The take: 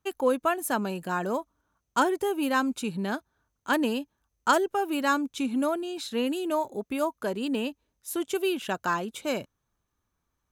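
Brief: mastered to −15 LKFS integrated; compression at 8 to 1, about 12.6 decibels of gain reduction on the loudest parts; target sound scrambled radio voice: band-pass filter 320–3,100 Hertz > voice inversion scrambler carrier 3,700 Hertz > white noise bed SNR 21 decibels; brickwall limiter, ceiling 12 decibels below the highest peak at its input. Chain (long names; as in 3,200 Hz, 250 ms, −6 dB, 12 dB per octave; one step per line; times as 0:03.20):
downward compressor 8 to 1, threshold −31 dBFS
brickwall limiter −31 dBFS
band-pass filter 320–3,100 Hz
voice inversion scrambler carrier 3,700 Hz
white noise bed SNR 21 dB
level +23.5 dB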